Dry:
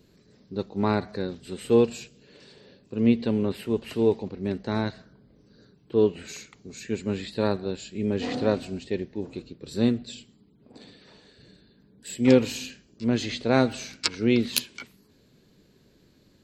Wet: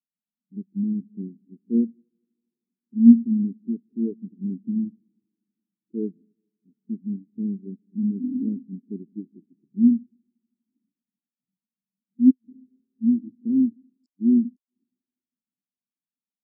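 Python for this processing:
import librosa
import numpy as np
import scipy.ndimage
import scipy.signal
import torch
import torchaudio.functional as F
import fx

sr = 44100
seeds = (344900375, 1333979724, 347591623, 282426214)

p1 = fx.wiener(x, sr, points=41)
p2 = scipy.signal.sosfilt(scipy.signal.cheby1(2, 1.0, [270.0, 6800.0], 'bandstop', fs=sr, output='sos'), p1)
p3 = fx.over_compress(p2, sr, threshold_db=-31.0, ratio=-1.0)
p4 = p2 + (p3 * librosa.db_to_amplitude(0.5))
p5 = scipy.signal.sosfilt(scipy.signal.cheby1(2, 1.0, 240.0, 'highpass', fs=sr, output='sos'), p4)
p6 = fx.echo_heads(p5, sr, ms=80, heads='second and third', feedback_pct=72, wet_db=-18.5)
p7 = fx.gate_flip(p6, sr, shuts_db=-11.0, range_db=-28)
p8 = fx.low_shelf(p7, sr, hz=480.0, db=11.5)
y = fx.spectral_expand(p8, sr, expansion=2.5)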